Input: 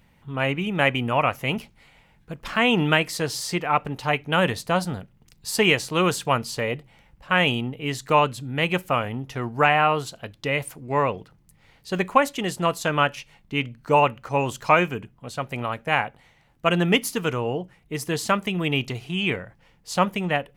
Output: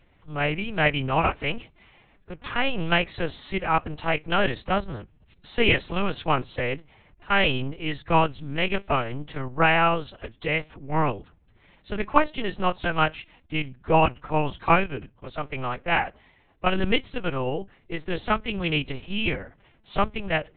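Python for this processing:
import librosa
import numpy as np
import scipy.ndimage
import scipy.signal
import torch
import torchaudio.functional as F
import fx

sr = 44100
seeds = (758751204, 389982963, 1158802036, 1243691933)

y = fx.lpc_vocoder(x, sr, seeds[0], excitation='pitch_kept', order=8)
y = fx.pitch_keep_formants(y, sr, semitones=1.5)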